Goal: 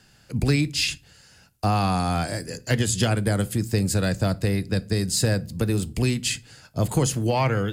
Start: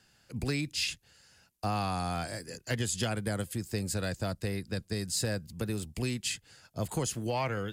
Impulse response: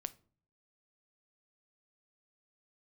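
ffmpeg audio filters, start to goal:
-filter_complex "[0:a]asplit=2[link_01][link_02];[1:a]atrim=start_sample=2205,lowshelf=frequency=370:gain=6[link_03];[link_02][link_03]afir=irnorm=-1:irlink=0,volume=8dB[link_04];[link_01][link_04]amix=inputs=2:normalize=0,volume=-1.5dB"

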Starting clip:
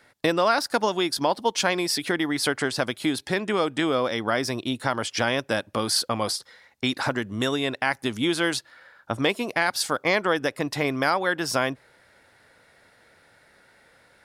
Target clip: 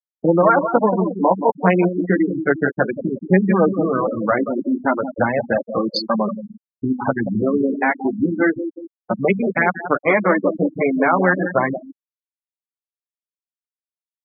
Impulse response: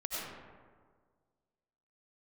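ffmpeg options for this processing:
-filter_complex "[0:a]bandreject=frequency=50:width_type=h:width=6,bandreject=frequency=100:width_type=h:width=6,bandreject=frequency=150:width_type=h:width=6,bandreject=frequency=200:width_type=h:width=6,bandreject=frequency=250:width_type=h:width=6,flanger=delay=5:depth=6.5:regen=-2:speed=0.32:shape=sinusoidal,equalizer=frequency=190:width_type=o:width=0.24:gain=14,asplit=2[link_01][link_02];[link_02]adelay=179,lowpass=frequency=4100:poles=1,volume=-8dB,asplit=2[link_03][link_04];[link_04]adelay=179,lowpass=frequency=4100:poles=1,volume=0.49,asplit=2[link_05][link_06];[link_06]adelay=179,lowpass=frequency=4100:poles=1,volume=0.49,asplit=2[link_07][link_08];[link_08]adelay=179,lowpass=frequency=4100:poles=1,volume=0.49,asplit=2[link_09][link_10];[link_10]adelay=179,lowpass=frequency=4100:poles=1,volume=0.49,asplit=2[link_11][link_12];[link_12]adelay=179,lowpass=frequency=4100:poles=1,volume=0.49[link_13];[link_01][link_03][link_05][link_07][link_09][link_11][link_13]amix=inputs=7:normalize=0,acrossover=split=290|5900[link_14][link_15][link_16];[link_15]acontrast=83[link_17];[link_14][link_17][link_16]amix=inputs=3:normalize=0,lowshelf=frequency=460:gain=5,afwtdn=0.0794,afftfilt=real='re*gte(hypot(re,im),0.178)':imag='im*gte(hypot(re,im),0.178)':win_size=1024:overlap=0.75,volume=2dB"

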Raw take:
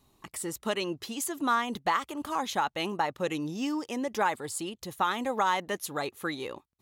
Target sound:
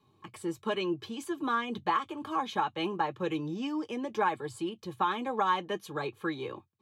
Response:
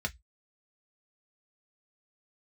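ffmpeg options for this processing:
-filter_complex "[0:a]bass=frequency=250:gain=-7,treble=frequency=4000:gain=-13[link_01];[1:a]atrim=start_sample=2205,asetrate=74970,aresample=44100[link_02];[link_01][link_02]afir=irnorm=-1:irlink=0"

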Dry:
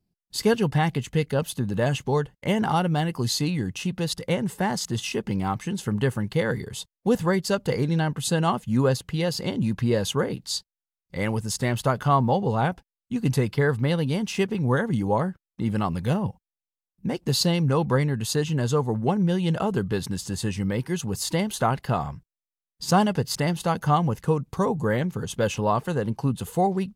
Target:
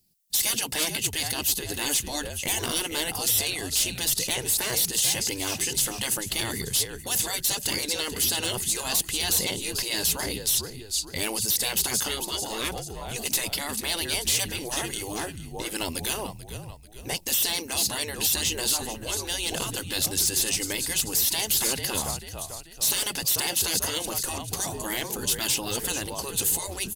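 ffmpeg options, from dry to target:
ffmpeg -i in.wav -filter_complex "[0:a]asplit=2[link_01][link_02];[link_02]asplit=4[link_03][link_04][link_05][link_06];[link_03]adelay=439,afreqshift=-54,volume=-15.5dB[link_07];[link_04]adelay=878,afreqshift=-108,volume=-22.2dB[link_08];[link_05]adelay=1317,afreqshift=-162,volume=-29dB[link_09];[link_06]adelay=1756,afreqshift=-216,volume=-35.7dB[link_10];[link_07][link_08][link_09][link_10]amix=inputs=4:normalize=0[link_11];[link_01][link_11]amix=inputs=2:normalize=0,crystalizer=i=9.5:c=0,afftfilt=real='re*lt(hypot(re,im),0.251)':imag='im*lt(hypot(re,im),0.251)':win_size=1024:overlap=0.75,volume=18dB,asoftclip=hard,volume=-18dB,equalizer=frequency=1300:width_type=o:width=1.1:gain=-7.5" out.wav

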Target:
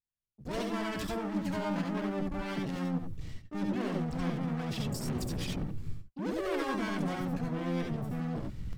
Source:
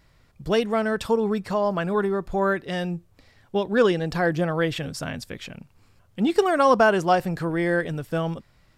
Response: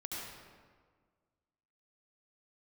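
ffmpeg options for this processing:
-filter_complex "[0:a]asubboost=boost=8:cutoff=200,areverse,acompressor=threshold=-30dB:ratio=10,areverse,agate=range=-50dB:threshold=-43dB:ratio=16:detection=peak,asoftclip=type=hard:threshold=-36.5dB[link_01];[1:a]atrim=start_sample=2205,atrim=end_sample=3969[link_02];[link_01][link_02]afir=irnorm=-1:irlink=0,asplit=2[link_03][link_04];[link_04]asetrate=66075,aresample=44100,atempo=0.66742,volume=-3dB[link_05];[link_03][link_05]amix=inputs=2:normalize=0,volume=6.5dB"

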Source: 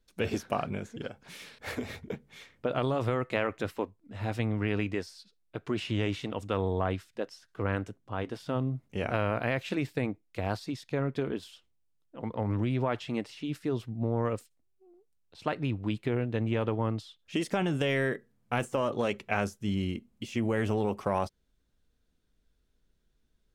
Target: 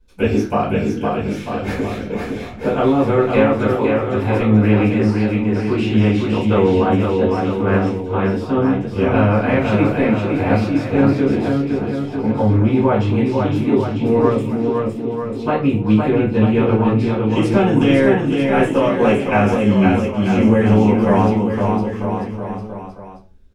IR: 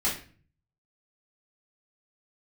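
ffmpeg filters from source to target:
-filter_complex "[0:a]highshelf=frequency=2100:gain=-8.5,aecho=1:1:510|943.5|1312|1625|1891:0.631|0.398|0.251|0.158|0.1[link_01];[1:a]atrim=start_sample=2205,asetrate=52920,aresample=44100[link_02];[link_01][link_02]afir=irnorm=-1:irlink=0,volume=6dB"

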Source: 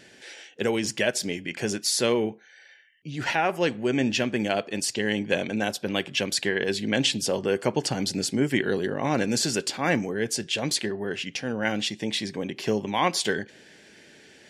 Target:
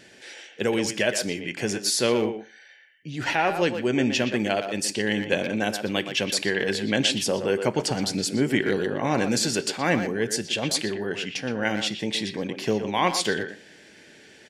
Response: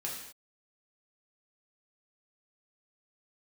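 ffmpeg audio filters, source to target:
-filter_complex "[0:a]asplit=2[link_01][link_02];[link_02]adelay=120,highpass=300,lowpass=3400,asoftclip=type=hard:threshold=-17.5dB,volume=-7dB[link_03];[link_01][link_03]amix=inputs=2:normalize=0,asplit=2[link_04][link_05];[1:a]atrim=start_sample=2205,afade=type=out:start_time=0.23:duration=0.01,atrim=end_sample=10584[link_06];[link_05][link_06]afir=irnorm=-1:irlink=0,volume=-17dB[link_07];[link_04][link_07]amix=inputs=2:normalize=0"

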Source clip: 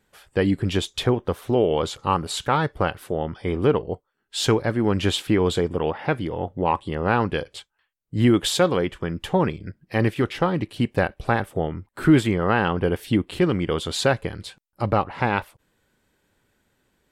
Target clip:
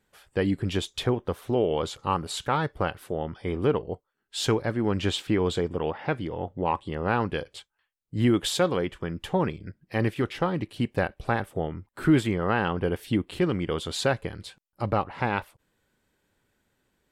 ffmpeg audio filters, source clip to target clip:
ffmpeg -i in.wav -filter_complex "[0:a]asettb=1/sr,asplit=3[link_01][link_02][link_03];[link_01]atrim=end=4.734[link_04];[link_02]atrim=start=4.73:end=6.94,asetpts=PTS-STARTPTS,afade=type=in:duration=0.004:curve=qsin,afade=type=out:start_time=2.206:duration=0.004:curve=qsin,equalizer=frequency=11000:width_type=o:width=0.27:gain=-11.5[link_05];[link_03]atrim=start=6.936[link_06];[link_04][link_05]acrossfade=duration=0.004:curve1=hsin:curve2=qsin[link_07];[link_07][link_06]acrossfade=duration=0.004:curve1=qsin:curve2=hsin,volume=-4.5dB" out.wav

